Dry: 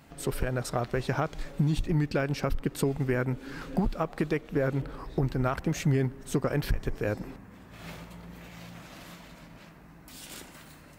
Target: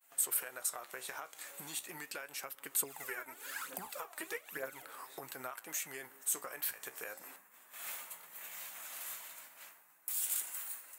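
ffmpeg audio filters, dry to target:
-filter_complex "[0:a]highpass=990,agate=range=-33dB:threshold=-54dB:ratio=3:detection=peak,acompressor=threshold=-41dB:ratio=6,flanger=delay=7.2:depth=9.7:regen=65:speed=0.38:shape=sinusoidal,aexciter=amount=6.5:drive=4.3:freq=7.1k,asettb=1/sr,asplit=3[a][b][c];[a]atrim=end=2.824[d];[b]atrim=start=2.82:end=4.85,asetpts=PTS-STARTPTS,afade=t=in:d=0.004:c=qsin,afade=t=out:st=2.026:d=0.004:c=qsin,aphaser=in_gain=1:out_gain=1:delay=3.4:decay=0.65:speed=1.1:type=triangular[e];[c]atrim=start=4.846[f];[d][e]acrossfade=d=0.004:c1=hsin:c2=qsin[g];[g][f]acrossfade=d=0.004:c1=qsin:c2=hsin,volume=3.5dB"

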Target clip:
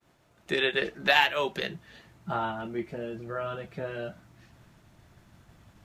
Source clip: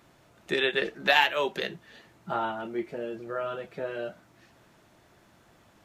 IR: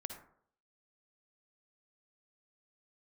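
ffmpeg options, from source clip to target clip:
-af "asubboost=boost=4:cutoff=190,agate=range=-33dB:threshold=-54dB:ratio=3:detection=peak"

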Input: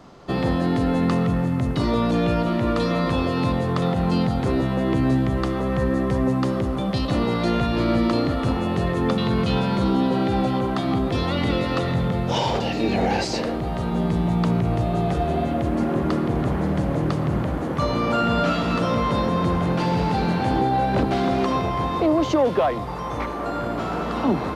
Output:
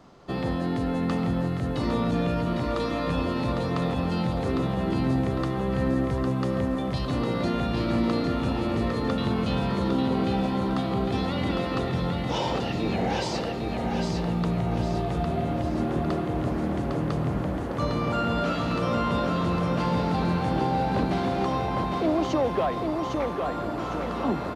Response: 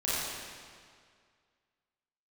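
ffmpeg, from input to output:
-af "aecho=1:1:805|1610|2415|3220|4025:0.596|0.262|0.115|0.0507|0.0223,volume=-6dB"

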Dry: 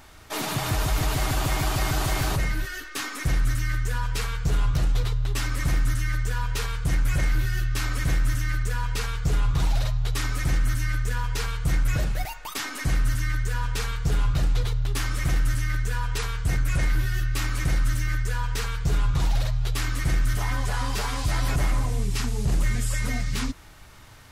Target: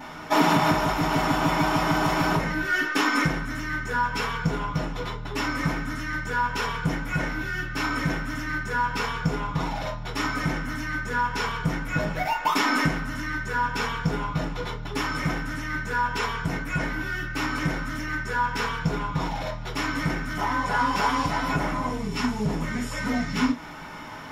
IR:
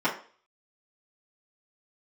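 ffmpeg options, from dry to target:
-filter_complex "[0:a]acompressor=threshold=-29dB:ratio=6[a];[1:a]atrim=start_sample=2205,atrim=end_sample=3528[b];[a][b]afir=irnorm=-1:irlink=0"

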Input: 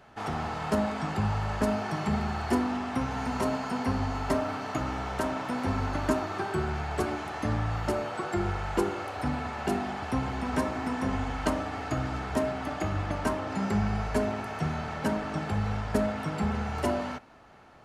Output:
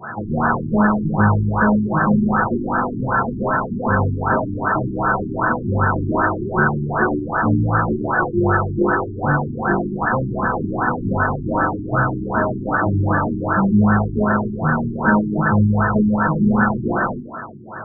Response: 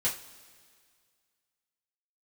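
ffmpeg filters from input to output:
-filter_complex "[0:a]equalizer=f=160:t=o:w=0.33:g=9,equalizer=f=500:t=o:w=0.33:g=-10,equalizer=f=800:t=o:w=0.33:g=-9,equalizer=f=1.6k:t=o:w=0.33:g=3,equalizer=f=2.5k:t=o:w=0.33:g=12,asplit=2[a][b];[b]highpass=f=720:p=1,volume=33dB,asoftclip=type=tanh:threshold=-10.5dB[c];[a][c]amix=inputs=2:normalize=0,lowpass=f=7k:p=1,volume=-6dB[d];[1:a]atrim=start_sample=2205,afade=t=out:st=0.34:d=0.01,atrim=end_sample=15435[e];[d][e]afir=irnorm=-1:irlink=0,afftfilt=real='re*lt(b*sr/1024,380*pow(1800/380,0.5+0.5*sin(2*PI*2.6*pts/sr)))':imag='im*lt(b*sr/1024,380*pow(1800/380,0.5+0.5*sin(2*PI*2.6*pts/sr)))':win_size=1024:overlap=0.75,volume=-2dB"

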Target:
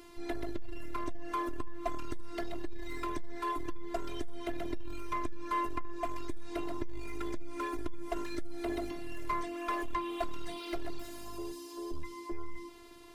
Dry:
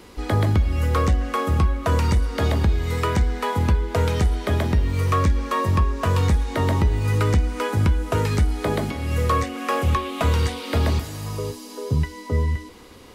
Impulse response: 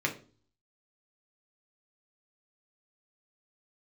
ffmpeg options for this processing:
-af "afftfilt=real='hypot(re,im)*cos(PI*b)':imag='0':win_size=512:overlap=0.75,aeval=exprs='(tanh(10*val(0)+0.5)-tanh(0.5))/10':c=same,volume=-2dB"

